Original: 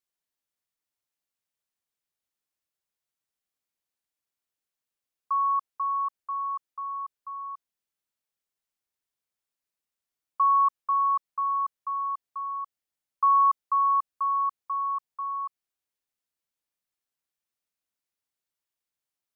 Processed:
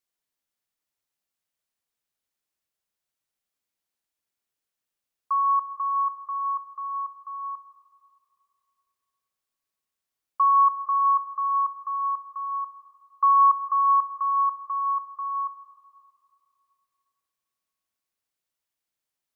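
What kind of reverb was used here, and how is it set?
comb and all-pass reverb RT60 2.7 s, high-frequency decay 0.8×, pre-delay 50 ms, DRR 11 dB
level +2 dB

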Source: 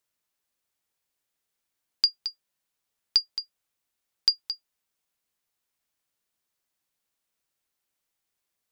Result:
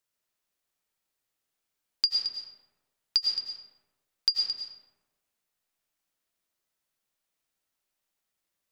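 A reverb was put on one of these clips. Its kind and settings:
comb and all-pass reverb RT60 1.2 s, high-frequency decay 0.55×, pre-delay 65 ms, DRR 0.5 dB
level −3 dB

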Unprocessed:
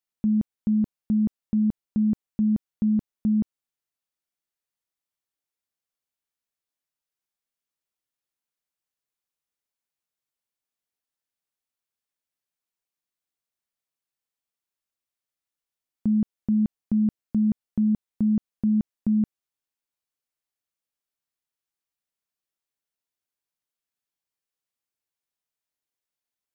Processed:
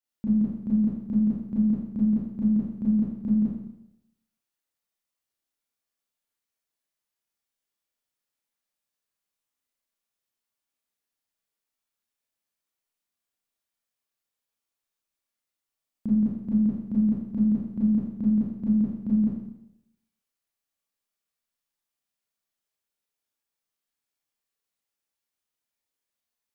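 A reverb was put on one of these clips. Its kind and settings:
four-comb reverb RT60 0.83 s, combs from 27 ms, DRR −8.5 dB
level −6.5 dB

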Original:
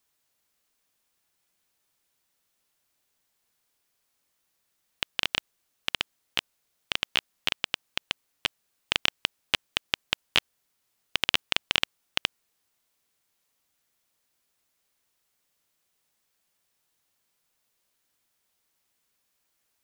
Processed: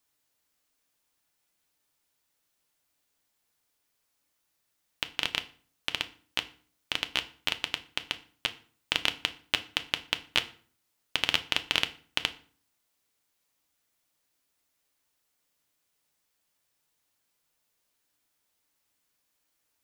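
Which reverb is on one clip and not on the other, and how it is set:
feedback delay network reverb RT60 0.45 s, low-frequency decay 1.35×, high-frequency decay 0.8×, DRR 8.5 dB
level −2 dB

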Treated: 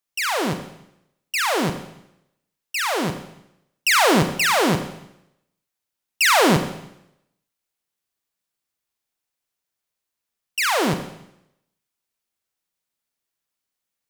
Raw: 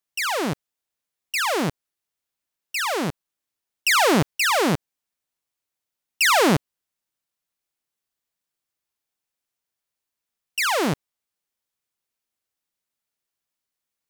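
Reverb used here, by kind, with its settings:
four-comb reverb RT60 0.81 s, combs from 33 ms, DRR 7.5 dB
level +1 dB

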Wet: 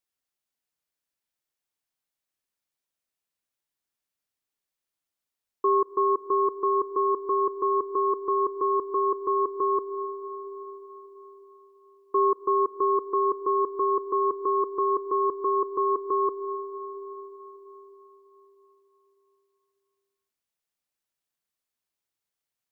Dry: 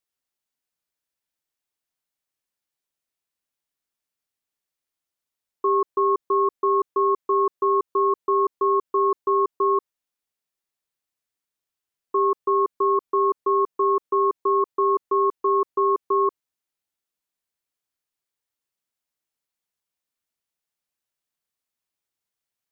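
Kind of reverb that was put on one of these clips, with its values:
comb and all-pass reverb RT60 4.6 s, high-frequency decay 0.6×, pre-delay 65 ms, DRR 14 dB
level −1.5 dB

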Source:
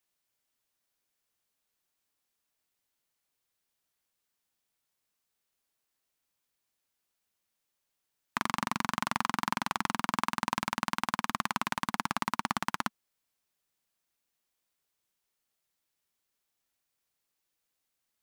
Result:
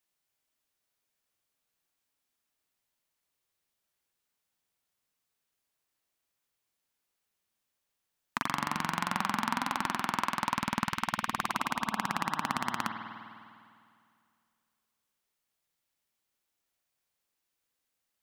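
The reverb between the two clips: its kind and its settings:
spring reverb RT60 2.3 s, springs 50 ms, chirp 65 ms, DRR 4.5 dB
level −1 dB

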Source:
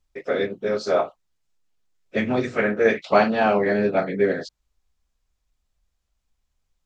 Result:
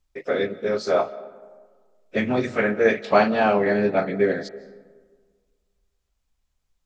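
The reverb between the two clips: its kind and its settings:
comb and all-pass reverb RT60 1.6 s, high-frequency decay 0.45×, pre-delay 115 ms, DRR 18.5 dB

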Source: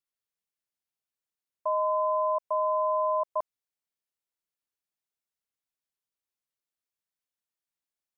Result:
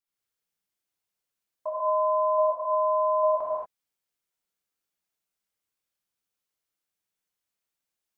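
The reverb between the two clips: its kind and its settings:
reverb whose tail is shaped and stops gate 260 ms flat, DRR −7 dB
level −2.5 dB

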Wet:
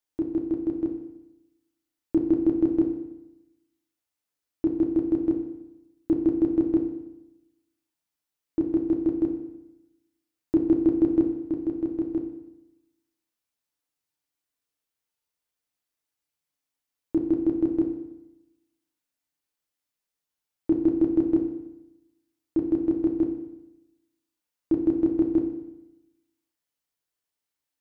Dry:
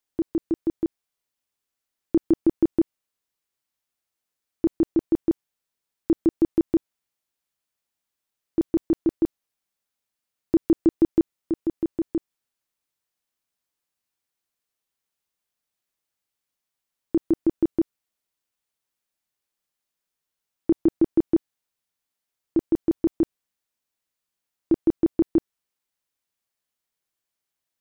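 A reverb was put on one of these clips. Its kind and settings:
feedback delay network reverb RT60 0.92 s, low-frequency decay 1.1×, high-frequency decay 0.95×, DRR 2 dB
level −4.5 dB

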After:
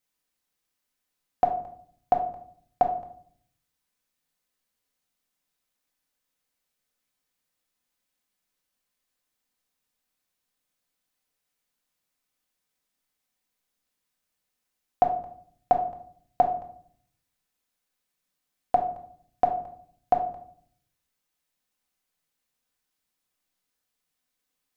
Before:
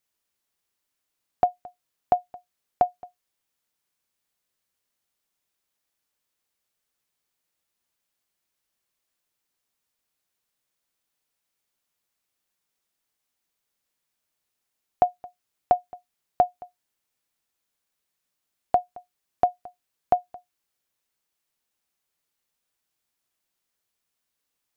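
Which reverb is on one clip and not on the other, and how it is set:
rectangular room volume 760 cubic metres, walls furnished, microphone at 2 metres
level −2.5 dB

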